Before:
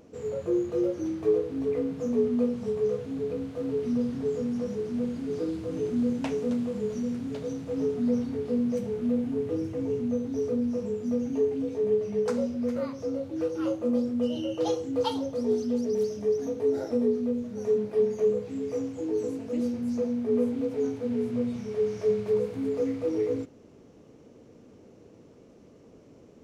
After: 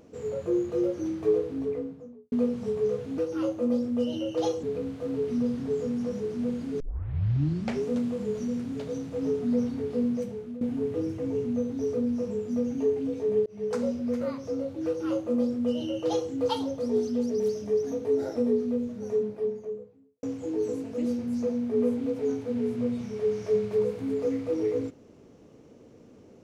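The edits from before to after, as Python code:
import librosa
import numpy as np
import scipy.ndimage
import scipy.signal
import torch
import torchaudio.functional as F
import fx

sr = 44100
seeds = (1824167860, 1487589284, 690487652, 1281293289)

y = fx.studio_fade_out(x, sr, start_s=1.4, length_s=0.92)
y = fx.studio_fade_out(y, sr, start_s=17.32, length_s=1.46)
y = fx.edit(y, sr, fx.tape_start(start_s=5.35, length_s=1.05),
    fx.fade_out_to(start_s=8.61, length_s=0.55, floor_db=-15.5),
    fx.fade_in_span(start_s=12.01, length_s=0.45, curve='qsin'),
    fx.duplicate(start_s=13.41, length_s=1.45, to_s=3.18), tone=tone)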